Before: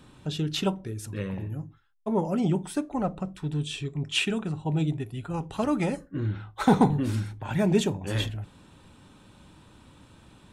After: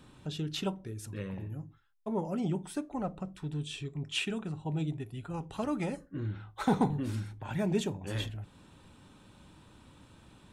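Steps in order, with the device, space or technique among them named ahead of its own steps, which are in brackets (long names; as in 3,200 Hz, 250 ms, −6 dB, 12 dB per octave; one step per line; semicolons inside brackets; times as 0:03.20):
parallel compression (in parallel at −3 dB: downward compressor, threshold −40 dBFS, peak gain reduction 23 dB)
on the sum: level −8 dB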